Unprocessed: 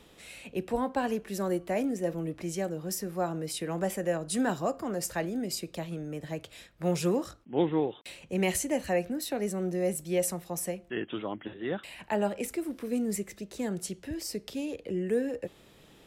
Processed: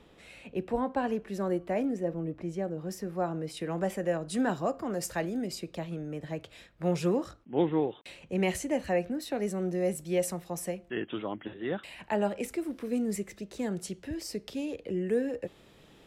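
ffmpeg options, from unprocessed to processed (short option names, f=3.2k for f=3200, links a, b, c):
-af "asetnsamples=n=441:p=0,asendcmd='2.03 lowpass f 1000;2.78 lowpass f 2200;3.57 lowpass f 3700;4.9 lowpass f 8500;5.47 lowpass f 3500;9.33 lowpass f 6000',lowpass=f=2.2k:p=1"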